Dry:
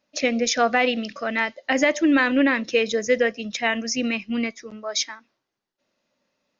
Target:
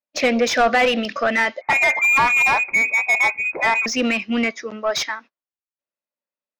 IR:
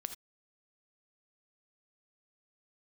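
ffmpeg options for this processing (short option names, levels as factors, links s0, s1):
-filter_complex "[0:a]asettb=1/sr,asplit=3[s0][s1][s2];[s0]atrim=end=1.614[s3];[s1]atrim=start=1.61:end=3.86,asetpts=PTS-STARTPTS,afade=t=in:d=0.004:c=qsin,afade=t=out:st=2.246:d=0.004:c=qsin,lowpass=f=2300:t=q:w=0.5098,lowpass=f=2300:t=q:w=0.6013,lowpass=f=2300:t=q:w=0.9,lowpass=f=2300:t=q:w=2.563,afreqshift=-2700[s4];[s2]atrim=start=3.856[s5];[s3][s4]acrossfade=d=0.004:c1=hsin:c2=qsin[s6];[s6][s5]acrossfade=d=0.004:c1=qsin:c2=hsin,asplit=2[s7][s8];[s8]highpass=f=720:p=1,volume=10,asoftclip=type=tanh:threshold=0.447[s9];[s7][s9]amix=inputs=2:normalize=0,lowpass=f=1900:p=1,volume=0.501,agate=range=0.0224:threshold=0.0112:ratio=16:detection=peak"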